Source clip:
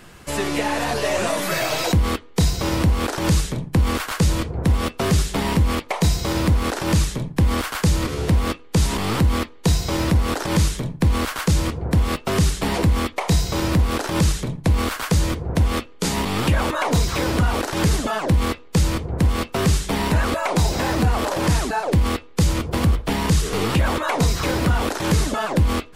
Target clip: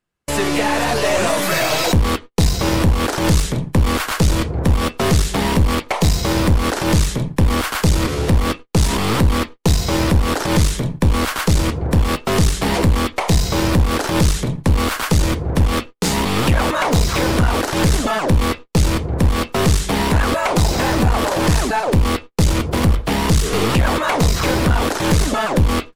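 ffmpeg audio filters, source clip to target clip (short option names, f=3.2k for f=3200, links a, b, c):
-af "agate=range=-41dB:threshold=-33dB:ratio=16:detection=peak,aeval=exprs='clip(val(0),-1,0.0841)':c=same,volume=5.5dB"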